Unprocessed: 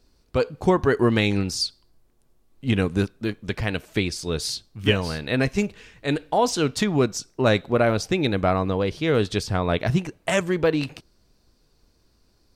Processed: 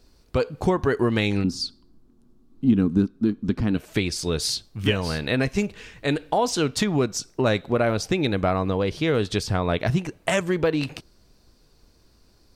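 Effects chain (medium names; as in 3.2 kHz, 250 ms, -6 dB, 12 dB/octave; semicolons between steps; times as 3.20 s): 1.44–3.77 s: FFT filter 120 Hz 0 dB, 250 Hz +13 dB, 560 Hz -7 dB, 1.3 kHz -2 dB, 2 kHz -12 dB, 4.2 kHz -6 dB, 11 kHz -12 dB; compression 2:1, threshold -27 dBFS, peak gain reduction 10.5 dB; trim +4.5 dB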